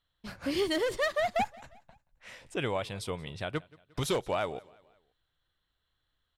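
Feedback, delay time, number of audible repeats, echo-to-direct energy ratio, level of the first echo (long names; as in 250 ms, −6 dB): 48%, 177 ms, 2, −22.5 dB, −23.5 dB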